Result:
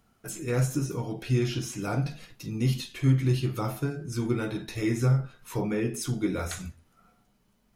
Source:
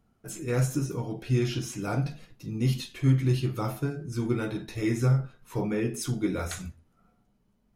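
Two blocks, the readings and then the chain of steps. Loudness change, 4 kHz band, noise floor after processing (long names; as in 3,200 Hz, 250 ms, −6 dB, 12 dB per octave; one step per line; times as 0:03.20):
0.0 dB, +1.0 dB, −68 dBFS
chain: one half of a high-frequency compander encoder only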